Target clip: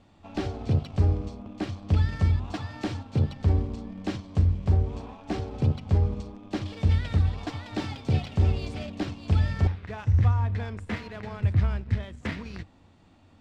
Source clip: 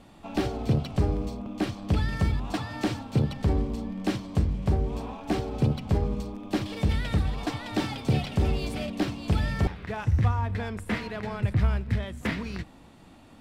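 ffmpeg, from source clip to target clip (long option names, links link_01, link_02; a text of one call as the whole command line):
ffmpeg -i in.wav -filter_complex "[0:a]lowpass=frequency=7600:width=0.5412,lowpass=frequency=7600:width=1.3066,equalizer=frequency=90:width=5.9:gain=13.5,asplit=2[link_01][link_02];[link_02]aeval=exprs='sgn(val(0))*max(abs(val(0))-0.0168,0)':channel_layout=same,volume=-4.5dB[link_03];[link_01][link_03]amix=inputs=2:normalize=0,volume=-7dB" out.wav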